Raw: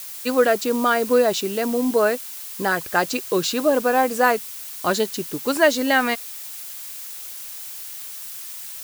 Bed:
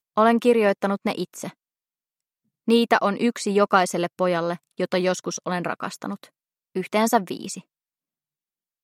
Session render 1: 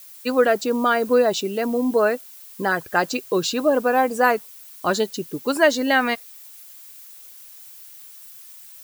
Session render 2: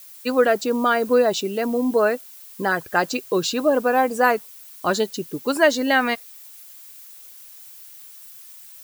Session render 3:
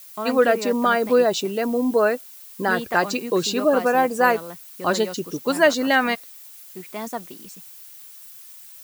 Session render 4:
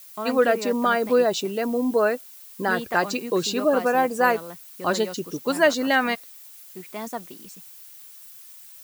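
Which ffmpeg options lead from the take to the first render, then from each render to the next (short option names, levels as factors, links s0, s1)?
-af "afftdn=nr=11:nf=-35"
-af anull
-filter_complex "[1:a]volume=0.266[s0];[0:a][s0]amix=inputs=2:normalize=0"
-af "volume=0.794"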